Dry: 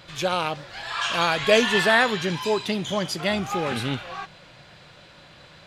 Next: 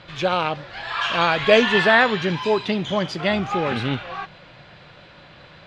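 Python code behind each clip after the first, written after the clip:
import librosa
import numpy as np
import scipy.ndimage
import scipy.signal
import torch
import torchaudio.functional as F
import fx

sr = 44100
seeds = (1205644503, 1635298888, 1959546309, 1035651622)

y = scipy.signal.sosfilt(scipy.signal.butter(2, 3600.0, 'lowpass', fs=sr, output='sos'), x)
y = y * 10.0 ** (3.5 / 20.0)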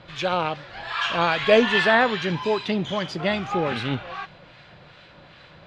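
y = fx.harmonic_tremolo(x, sr, hz=2.5, depth_pct=50, crossover_hz=1100.0)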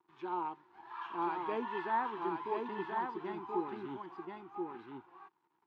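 y = np.sign(x) * np.maximum(np.abs(x) - 10.0 ** (-44.5 / 20.0), 0.0)
y = fx.double_bandpass(y, sr, hz=570.0, octaves=1.4)
y = y + 10.0 ** (-3.5 / 20.0) * np.pad(y, (int(1031 * sr / 1000.0), 0))[:len(y)]
y = y * 10.0 ** (-5.0 / 20.0)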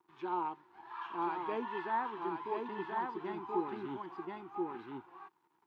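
y = fx.rider(x, sr, range_db=3, speed_s=2.0)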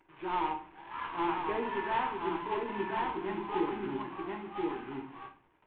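y = fx.cvsd(x, sr, bps=16000)
y = fx.room_shoebox(y, sr, seeds[0], volume_m3=43.0, walls='mixed', distance_m=0.5)
y = y * 10.0 ** (2.5 / 20.0)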